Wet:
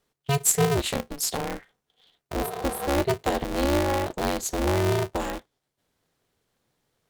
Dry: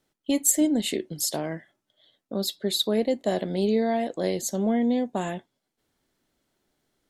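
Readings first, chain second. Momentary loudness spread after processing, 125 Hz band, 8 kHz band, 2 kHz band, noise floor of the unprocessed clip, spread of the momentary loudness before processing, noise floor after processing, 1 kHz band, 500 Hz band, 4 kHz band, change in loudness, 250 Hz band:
10 LU, +8.0 dB, 0.0 dB, +6.5 dB, -82 dBFS, 10 LU, -82 dBFS, +6.0 dB, +0.5 dB, -2.5 dB, 0.0 dB, -4.5 dB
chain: spectral repair 2.42–2.86, 460–8200 Hz; polarity switched at an audio rate 140 Hz

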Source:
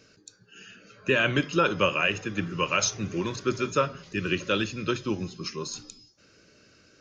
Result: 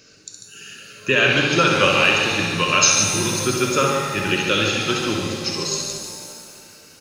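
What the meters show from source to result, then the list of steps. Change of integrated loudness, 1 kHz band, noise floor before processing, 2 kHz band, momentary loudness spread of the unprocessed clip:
+9.5 dB, +8.5 dB, -60 dBFS, +9.5 dB, 11 LU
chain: high shelf 2900 Hz +9.5 dB; tapped delay 66/144 ms -6/-6.5 dB; hard clip -7.5 dBFS, distortion -43 dB; shimmer reverb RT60 2.3 s, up +7 st, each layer -8 dB, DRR 2.5 dB; gain +2.5 dB

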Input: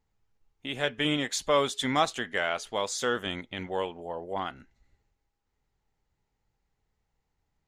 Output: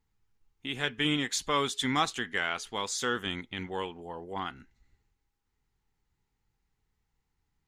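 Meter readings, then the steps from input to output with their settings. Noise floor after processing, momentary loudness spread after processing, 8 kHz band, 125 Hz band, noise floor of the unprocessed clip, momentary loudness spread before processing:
-80 dBFS, 11 LU, 0.0 dB, 0.0 dB, -80 dBFS, 10 LU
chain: bell 600 Hz -12 dB 0.53 oct

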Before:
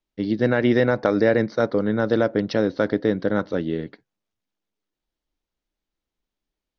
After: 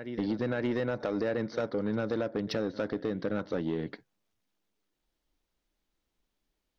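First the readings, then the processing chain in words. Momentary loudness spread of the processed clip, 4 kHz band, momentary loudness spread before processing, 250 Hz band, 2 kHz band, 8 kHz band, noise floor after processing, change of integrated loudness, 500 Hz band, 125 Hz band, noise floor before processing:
3 LU, -8.0 dB, 7 LU, -10.0 dB, -12.0 dB, n/a, -83 dBFS, -11.0 dB, -11.0 dB, -10.0 dB, under -85 dBFS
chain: on a send: reverse echo 0.576 s -23.5 dB; on the sum: compressor 6:1, threshold -29 dBFS, peak gain reduction 15 dB; soft clip -26 dBFS, distortion -14 dB; gain +3.5 dB

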